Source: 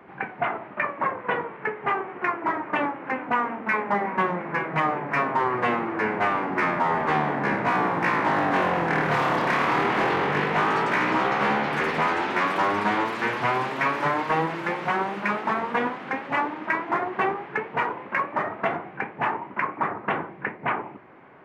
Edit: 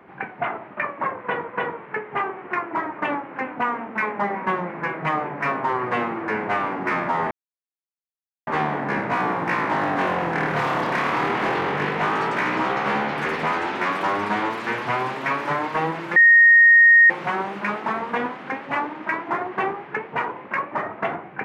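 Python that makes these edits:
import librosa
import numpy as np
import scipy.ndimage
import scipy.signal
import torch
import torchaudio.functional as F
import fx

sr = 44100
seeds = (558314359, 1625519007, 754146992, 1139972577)

y = fx.edit(x, sr, fx.repeat(start_s=1.19, length_s=0.29, count=2),
    fx.insert_silence(at_s=7.02, length_s=1.16),
    fx.insert_tone(at_s=14.71, length_s=0.94, hz=1860.0, db=-8.5), tone=tone)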